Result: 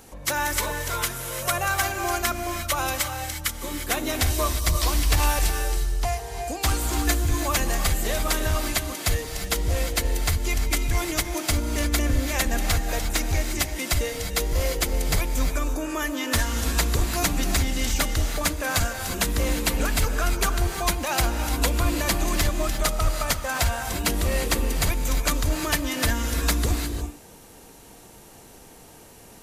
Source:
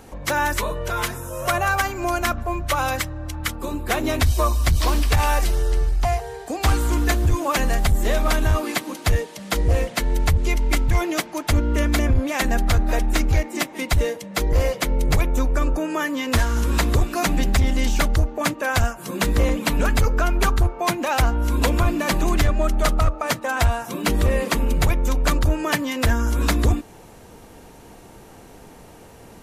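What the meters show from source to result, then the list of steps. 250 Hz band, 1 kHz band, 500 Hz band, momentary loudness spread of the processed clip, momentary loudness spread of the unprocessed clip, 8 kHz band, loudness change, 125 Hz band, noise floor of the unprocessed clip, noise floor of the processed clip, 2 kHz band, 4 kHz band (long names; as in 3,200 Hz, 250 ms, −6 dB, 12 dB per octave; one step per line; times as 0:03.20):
−5.0 dB, −4.0 dB, −4.5 dB, 4 LU, 5 LU, +4.0 dB, −3.0 dB, −5.0 dB, −45 dBFS, −48 dBFS, −2.5 dB, +1.0 dB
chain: high-shelf EQ 3,400 Hz +10.5 dB
reverb whose tail is shaped and stops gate 380 ms rising, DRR 6 dB
level −6 dB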